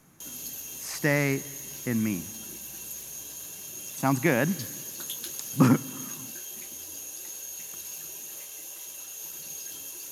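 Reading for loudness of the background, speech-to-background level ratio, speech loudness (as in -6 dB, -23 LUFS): -36.5 LUFS, 9.5 dB, -27.0 LUFS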